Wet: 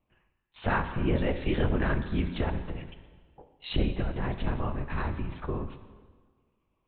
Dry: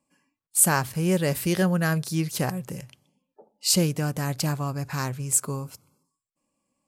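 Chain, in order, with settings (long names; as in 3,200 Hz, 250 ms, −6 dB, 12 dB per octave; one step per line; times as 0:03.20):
linear-prediction vocoder at 8 kHz whisper
in parallel at +1 dB: downward compressor, threshold −31 dBFS, peak gain reduction 13.5 dB
on the sum: dense smooth reverb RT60 1.5 s, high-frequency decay 0.9×, DRR 8.5 dB
level −6 dB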